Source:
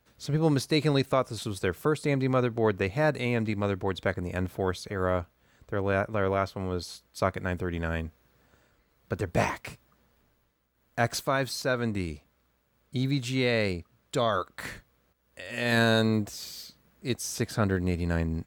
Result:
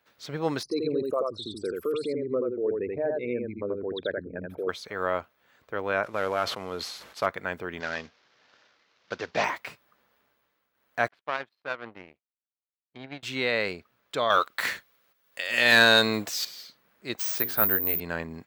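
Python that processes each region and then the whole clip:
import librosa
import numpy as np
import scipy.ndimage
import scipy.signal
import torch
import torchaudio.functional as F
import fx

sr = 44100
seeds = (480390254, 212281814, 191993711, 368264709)

y = fx.chain(x, sr, fx.envelope_sharpen(power=3.0),
    fx.dynamic_eq(hz=770.0, q=2.0, threshold_db=-43.0, ratio=4.0, max_db=-7),
    fx.echo_single(ms=82, db=-3.0), at=(0.63, 4.69))
y = fx.chain(y, sr, fx.cvsd(bps=64000),
    fx.sustainer(db_per_s=59.0), at=(6.03, 7.26))
y = fx.chain(y, sr, fx.cvsd(bps=32000),
    fx.highpass(hz=130.0, slope=6),
    fx.high_shelf(hz=3000.0, db=7.5), at=(7.8, 9.44))
y = fx.chain(y, sr, fx.lowpass(hz=3100.0, slope=24),
    fx.power_curve(exponent=2.0), at=(11.08, 13.23))
y = fx.chain(y, sr, fx.high_shelf(hz=2300.0, db=9.5),
    fx.leveller(passes=1), at=(14.3, 16.45))
y = fx.chain(y, sr, fx.hum_notches(base_hz=60, count=8),
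    fx.resample_bad(factor=3, down='none', up='zero_stuff'), at=(17.19, 18.0))
y = fx.highpass(y, sr, hz=900.0, slope=6)
y = fx.peak_eq(y, sr, hz=9500.0, db=-13.0, octaves=1.5)
y = y * 10.0 ** (5.0 / 20.0)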